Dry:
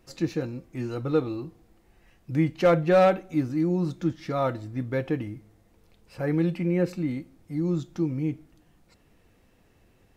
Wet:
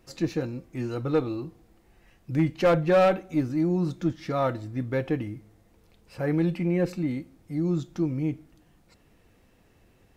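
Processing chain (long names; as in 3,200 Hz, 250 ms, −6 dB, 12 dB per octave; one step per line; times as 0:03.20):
one-sided soft clipper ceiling −13.5 dBFS
hard clipping −15.5 dBFS, distortion −24 dB
level +1 dB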